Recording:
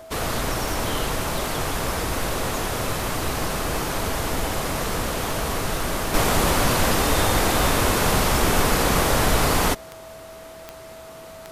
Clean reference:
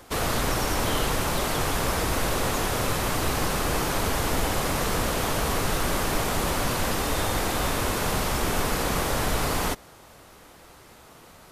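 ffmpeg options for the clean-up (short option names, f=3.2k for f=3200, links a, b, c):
-af "adeclick=t=4,bandreject=f=650:w=30,asetnsamples=n=441:p=0,asendcmd='6.14 volume volume -6dB',volume=0dB"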